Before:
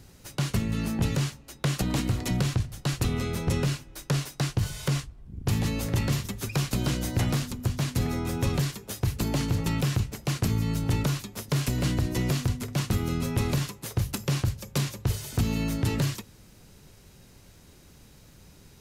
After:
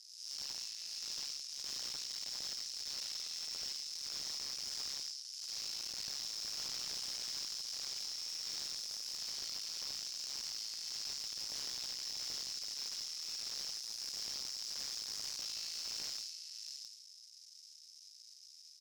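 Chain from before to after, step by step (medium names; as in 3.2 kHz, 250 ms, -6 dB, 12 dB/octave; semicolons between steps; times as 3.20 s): spectral blur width 283 ms; half-wave rectifier; ladder band-pass 5.5 kHz, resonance 80%; on a send: delay 665 ms -9 dB; on the sum: slew-rate limiter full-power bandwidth 15 Hz; trim +13 dB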